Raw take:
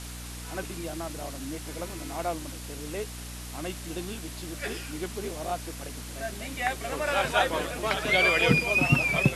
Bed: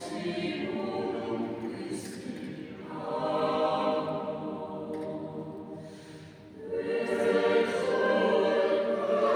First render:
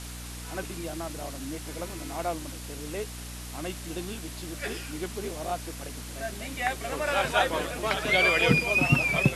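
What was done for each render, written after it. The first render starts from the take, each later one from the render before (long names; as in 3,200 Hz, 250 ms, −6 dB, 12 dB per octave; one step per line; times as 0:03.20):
no processing that can be heard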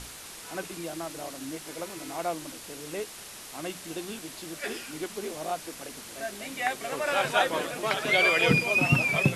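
mains-hum notches 60/120/180/240/300 Hz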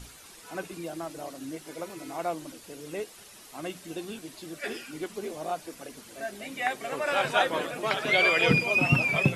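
broadband denoise 9 dB, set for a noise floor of −44 dBFS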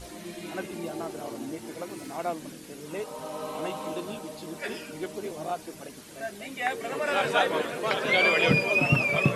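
mix in bed −7.5 dB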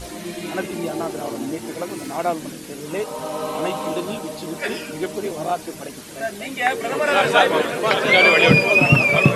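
level +9 dB
brickwall limiter −1 dBFS, peak gain reduction 1 dB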